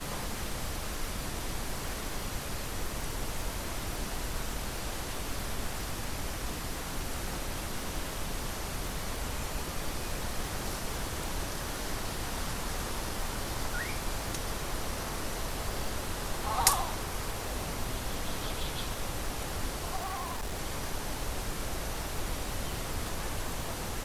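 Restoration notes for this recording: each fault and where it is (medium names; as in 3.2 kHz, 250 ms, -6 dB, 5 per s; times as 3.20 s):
crackle 120 per s -38 dBFS
19.96–20.60 s: clipped -31.5 dBFS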